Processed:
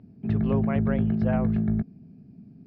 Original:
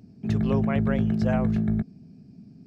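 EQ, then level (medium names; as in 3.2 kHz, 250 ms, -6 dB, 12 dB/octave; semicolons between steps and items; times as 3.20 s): distance through air 350 m; 0.0 dB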